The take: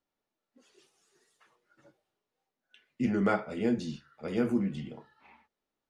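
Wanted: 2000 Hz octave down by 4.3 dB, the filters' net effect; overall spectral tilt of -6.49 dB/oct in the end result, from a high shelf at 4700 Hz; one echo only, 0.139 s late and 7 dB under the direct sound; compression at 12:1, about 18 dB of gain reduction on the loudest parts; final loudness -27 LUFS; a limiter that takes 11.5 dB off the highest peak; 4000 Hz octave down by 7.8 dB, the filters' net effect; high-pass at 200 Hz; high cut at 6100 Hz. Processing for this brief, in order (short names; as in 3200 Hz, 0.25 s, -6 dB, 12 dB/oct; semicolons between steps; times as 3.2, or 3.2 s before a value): HPF 200 Hz; LPF 6100 Hz; bell 2000 Hz -4.5 dB; bell 4000 Hz -4.5 dB; high shelf 4700 Hz -7.5 dB; compressor 12:1, threshold -43 dBFS; limiter -43 dBFS; echo 0.139 s -7 dB; gain +25.5 dB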